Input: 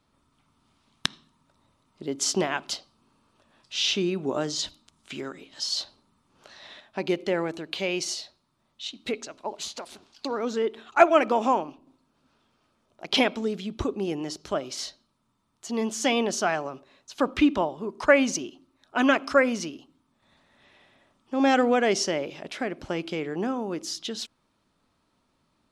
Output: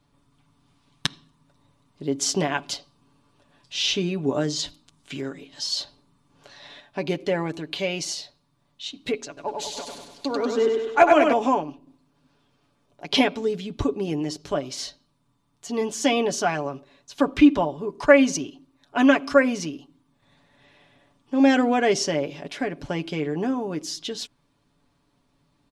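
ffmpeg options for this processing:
-filter_complex "[0:a]asettb=1/sr,asplit=3[s0][s1][s2];[s0]atrim=end=9.274[s3];[s1]atrim=start=9.27:end=11.33,asetpts=PTS-STARTPTS,afade=t=in:d=0.004:c=qsin,afade=t=out:st=2.056:d=0.004:c=qsin,aecho=1:1:98|196|294|392|490|588|686:0.631|0.334|0.177|0.0939|0.0498|0.0264|0.014,atrim=end_sample=90846[s4];[s2]atrim=start=11.326[s5];[s3][s4]acrossfade=d=0.004:c1=hsin:c2=qsin[s6];[s6][s5]acrossfade=d=0.004:c1=qsin:c2=hsin,lowshelf=f=230:g=6.5,bandreject=f=1300:w=15,aecho=1:1:7:0.57"

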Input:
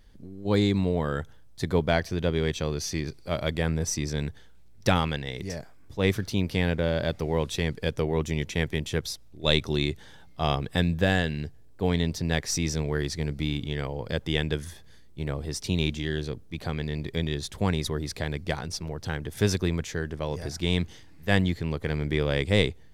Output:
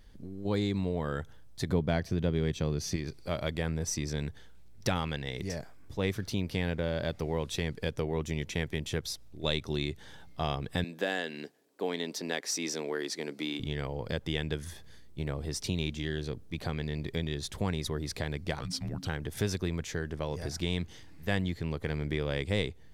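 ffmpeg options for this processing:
-filter_complex "[0:a]asettb=1/sr,asplit=3[s0][s1][s2];[s0]atrim=end=1.694[s3];[s1]atrim=start=1.69:end=2.96,asetpts=PTS-STARTPTS,afade=t=in:d=0.004:c=qsin,afade=t=out:st=1.266:d=0.004:c=qsin,equalizer=f=150:t=o:w=2.7:g=8[s4];[s2]atrim=start=2.956[s5];[s3][s4]acrossfade=d=0.004:c1=hsin:c2=qsin[s6];[s6][s5]acrossfade=d=0.004:c1=qsin:c2=hsin,asettb=1/sr,asplit=3[s7][s8][s9];[s7]atrim=end=10.844[s10];[s8]atrim=start=10.84:end=13.6,asetpts=PTS-STARTPTS,afade=t=in:d=0.004:c=qsin,afade=t=out:st=2.756:d=0.004:c=qsin,highpass=f=260:w=0.5412,highpass=f=260:w=1.3066[s11];[s9]atrim=start=13.596[s12];[s10][s11]acrossfade=d=0.004:c1=hsin:c2=qsin[s13];[s13][s12]acrossfade=d=0.004:c1=qsin:c2=hsin,asettb=1/sr,asplit=3[s14][s15][s16];[s14]atrim=end=18.594[s17];[s15]atrim=start=18.59:end=19.07,asetpts=PTS-STARTPTS,afade=t=in:d=0.004:c=qsin,afade=t=out:st=0.476:d=0.004:c=qsin,afreqshift=-270[s18];[s16]atrim=start=19.066[s19];[s17][s18]acrossfade=d=0.004:c1=hsin:c2=qsin[s20];[s20][s19]acrossfade=d=0.004:c1=qsin:c2=hsin,acompressor=threshold=0.0251:ratio=2"

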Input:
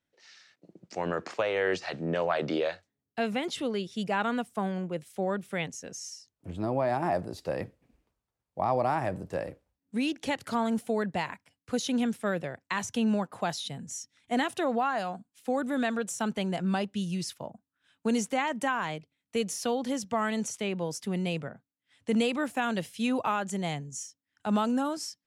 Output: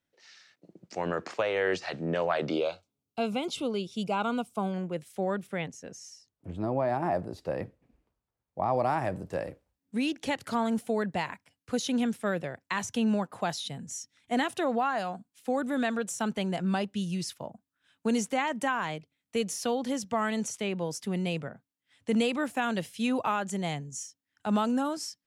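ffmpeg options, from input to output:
-filter_complex "[0:a]asettb=1/sr,asplit=3[s0][s1][s2];[s0]atrim=end=2.504[s3];[s1]atrim=start=2.5:end=4.74,asetpts=PTS-STARTPTS,afade=t=in:d=0.004:c=qsin,afade=t=out:st=2.236:d=0.004:c=qsin,asuperstop=centerf=1800:order=4:qfactor=2.4[s4];[s2]atrim=start=4.736[s5];[s3][s4]acrossfade=d=0.004:c1=hsin:c2=qsin[s6];[s6][s5]acrossfade=d=0.004:c1=qsin:c2=hsin,asettb=1/sr,asplit=3[s7][s8][s9];[s7]atrim=end=5.474[s10];[s8]atrim=start=5.47:end=8.74,asetpts=PTS-STARTPTS,afade=t=in:d=0.004:c=qsin,afade=t=out:st=3.266:d=0.004:c=qsin,highshelf=f=2600:g=-7.5[s11];[s9]atrim=start=8.736[s12];[s10][s11]acrossfade=d=0.004:c1=hsin:c2=qsin[s13];[s13][s12]acrossfade=d=0.004:c1=qsin:c2=hsin"

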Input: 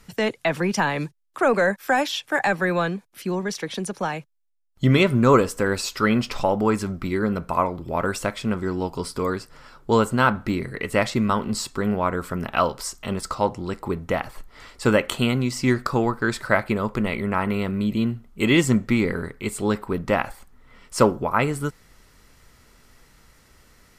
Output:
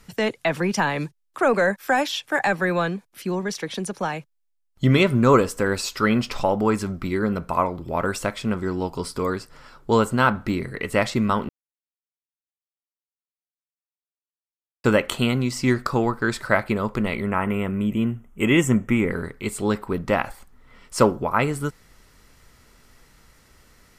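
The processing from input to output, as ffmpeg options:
-filter_complex "[0:a]asettb=1/sr,asplit=3[s0][s1][s2];[s0]atrim=end=17.314[s3];[s1]atrim=start=17.31:end=19.11,asetpts=PTS-STARTPTS,afade=t=in:d=0.004:c=qsin,afade=t=out:st=1.796:d=0.004:c=qsin,asuperstop=centerf=4400:order=4:qfactor=1.6[s4];[s2]atrim=start=19.106[s5];[s3][s4]acrossfade=d=0.004:c1=hsin:c2=qsin[s6];[s6][s5]acrossfade=d=0.004:c1=qsin:c2=hsin,asplit=3[s7][s8][s9];[s7]atrim=end=11.49,asetpts=PTS-STARTPTS,afade=t=out:st=11.486:d=0.004:c=hsin[s10];[s8]atrim=start=11.49:end=14.84,asetpts=PTS-STARTPTS,volume=0[s11];[s9]atrim=start=14.84,asetpts=PTS-STARTPTS,afade=t=in:d=0.004:c=hsin[s12];[s10][s11][s12]concat=n=3:v=0:a=1"

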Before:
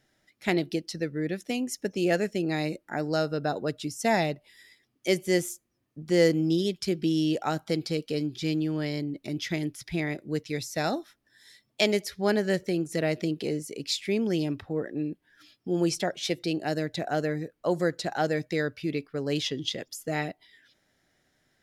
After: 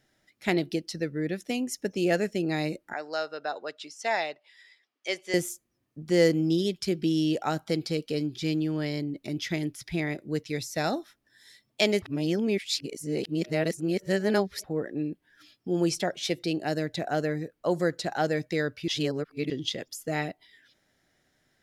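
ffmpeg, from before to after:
-filter_complex "[0:a]asettb=1/sr,asplit=3[s0][s1][s2];[s0]atrim=end=2.934[s3];[s1]atrim=start=2.93:end=5.34,asetpts=PTS-STARTPTS,afade=t=in:d=0.004:c=qsin,afade=t=out:st=2.406:d=0.004:c=qsin,highpass=680,lowpass=5100[s4];[s2]atrim=start=5.336[s5];[s3][s4]acrossfade=d=0.004:c1=hsin:c2=qsin[s6];[s6][s5]acrossfade=d=0.004:c1=qsin:c2=hsin,asplit=5[s7][s8][s9][s10][s11];[s7]atrim=end=12.022[s12];[s8]atrim=start=12.018:end=14.642,asetpts=PTS-STARTPTS,areverse[s13];[s9]atrim=start=14.638:end=18.882[s14];[s10]atrim=start=18.878:end=19.502,asetpts=PTS-STARTPTS,areverse[s15];[s11]atrim=start=19.498[s16];[s12][s13]acrossfade=d=0.004:c1=hsin:c2=hsin[s17];[s17][s14]acrossfade=d=0.004:c1=hsin:c2=hsin[s18];[s18][s15]acrossfade=d=0.004:c1=hsin:c2=hsin[s19];[s19][s16]acrossfade=d=0.004:c1=hsin:c2=hsin"

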